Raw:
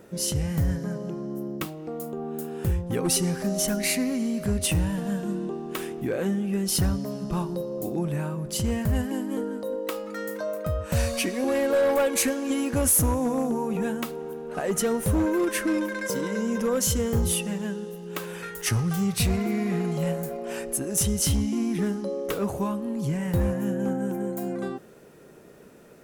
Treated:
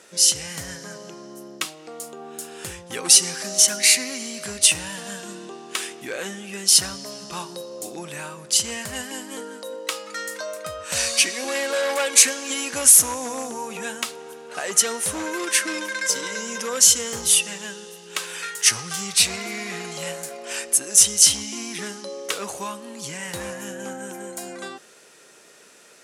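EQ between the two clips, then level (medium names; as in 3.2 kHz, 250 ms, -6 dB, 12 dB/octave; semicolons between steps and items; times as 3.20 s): frequency weighting ITU-R 468; +2.0 dB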